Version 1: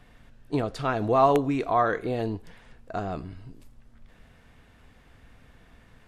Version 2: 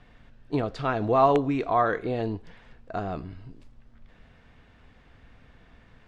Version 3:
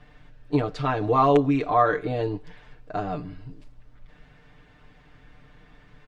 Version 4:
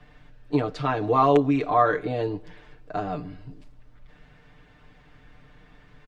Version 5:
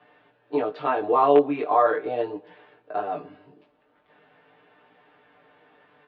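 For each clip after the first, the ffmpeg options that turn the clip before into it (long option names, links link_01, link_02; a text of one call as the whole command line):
ffmpeg -i in.wav -af "lowpass=5000" out.wav
ffmpeg -i in.wav -af "aecho=1:1:6.7:0.83" out.wav
ffmpeg -i in.wav -filter_complex "[0:a]acrossover=split=120|710[link_01][link_02][link_03];[link_01]asoftclip=type=tanh:threshold=-39.5dB[link_04];[link_02]aecho=1:1:129|258|387|516:0.075|0.039|0.0203|0.0105[link_05];[link_04][link_05][link_03]amix=inputs=3:normalize=0" out.wav
ffmpeg -i in.wav -af "flanger=delay=16.5:depth=4.2:speed=0.4,highpass=340,equalizer=frequency=400:width_type=q:width=4:gain=4,equalizer=frequency=580:width_type=q:width=4:gain=3,equalizer=frequency=840:width_type=q:width=4:gain=4,equalizer=frequency=2100:width_type=q:width=4:gain=-4,lowpass=frequency=3300:width=0.5412,lowpass=frequency=3300:width=1.3066,volume=3dB" out.wav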